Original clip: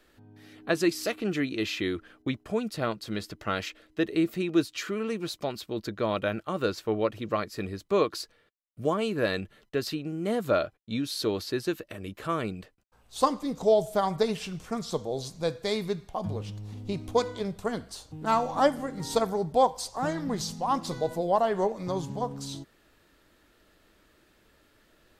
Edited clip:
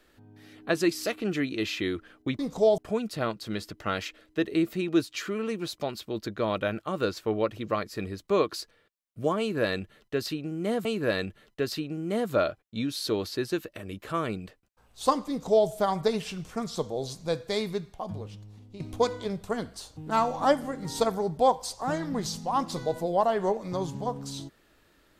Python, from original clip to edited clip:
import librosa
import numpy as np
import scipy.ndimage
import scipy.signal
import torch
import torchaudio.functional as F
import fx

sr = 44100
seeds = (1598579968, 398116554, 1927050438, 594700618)

y = fx.edit(x, sr, fx.repeat(start_s=9.0, length_s=1.46, count=2),
    fx.duplicate(start_s=13.44, length_s=0.39, to_s=2.39),
    fx.fade_out_to(start_s=15.72, length_s=1.23, floor_db=-14.0), tone=tone)